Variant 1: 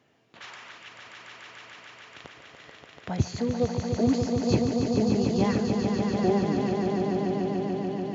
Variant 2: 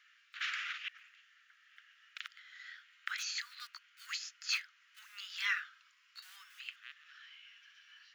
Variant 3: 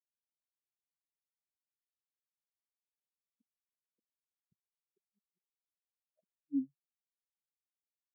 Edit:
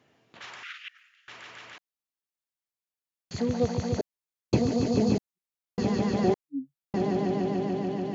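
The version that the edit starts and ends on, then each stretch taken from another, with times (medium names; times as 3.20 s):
1
0.63–1.28 s: from 2
1.78–3.31 s: from 3
4.01–4.53 s: from 3
5.18–5.78 s: from 3
6.34–6.94 s: from 3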